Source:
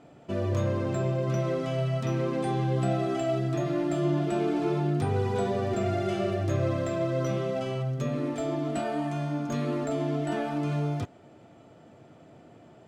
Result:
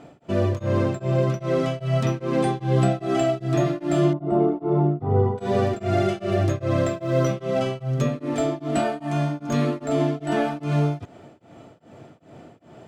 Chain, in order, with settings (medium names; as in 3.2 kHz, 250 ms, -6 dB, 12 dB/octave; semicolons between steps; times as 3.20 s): 4.13–5.38 s: Savitzky-Golay filter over 65 samples; 6.86–7.34 s: short-mantissa float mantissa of 6-bit; tremolo of two beating tones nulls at 2.5 Hz; trim +8.5 dB